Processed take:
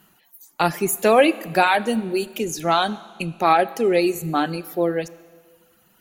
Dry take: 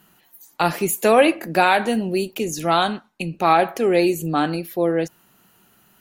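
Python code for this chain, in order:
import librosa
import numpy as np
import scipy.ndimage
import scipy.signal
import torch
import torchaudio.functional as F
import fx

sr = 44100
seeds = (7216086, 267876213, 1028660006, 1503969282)

y = fx.dereverb_blind(x, sr, rt60_s=1.1)
y = fx.rev_schroeder(y, sr, rt60_s=1.8, comb_ms=28, drr_db=17.5)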